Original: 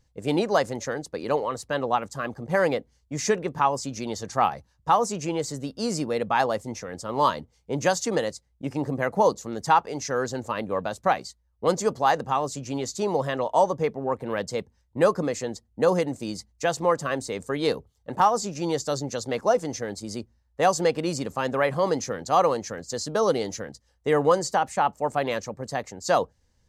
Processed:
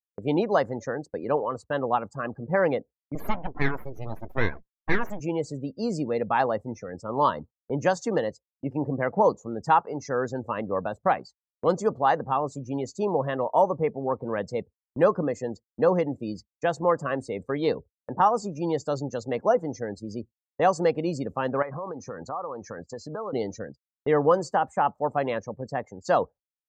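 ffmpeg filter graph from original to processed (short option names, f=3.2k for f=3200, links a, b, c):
-filter_complex "[0:a]asettb=1/sr,asplit=3[a][b][c];[a]atrim=end=3.154[d];[b]atrim=start=3.15:end=5.2,asetpts=PTS-STARTPTS,afade=t=in:d=0.004:c=qsin,afade=t=out:st=2.046:d=0.004:c=qsin,deesser=0.55,aeval=exprs='abs(val(0))':c=same[e];[c]atrim=start=5.196[f];[d][e]acrossfade=d=0.004:c1=hsin:c2=qsin[g];[g][f]acrossfade=d=0.004:c1=qsin:c2=hsin,asettb=1/sr,asplit=3[h][i][j];[h]atrim=end=21.624[k];[i]atrim=start=21.62:end=23.33,asetpts=PTS-STARTPTS,afade=t=in:d=0.004:c=qsin,afade=t=out:st=1.706:d=0.004:c=qsin,acompressor=threshold=-31dB:ratio=12:attack=3.2:release=140:knee=1:detection=peak,equalizer=f=1.1k:t=o:w=1.2:g=6[l];[j]atrim=start=23.326[m];[k][l]acrossfade=d=0.004:c1=hsin:c2=qsin[n];[n][m]acrossfade=d=0.004:c1=qsin:c2=hsin,afftdn=nr=24:nf=-38,agate=range=-33dB:threshold=-42dB:ratio=16:detection=peak,equalizer=f=7.1k:t=o:w=2.2:g=-10"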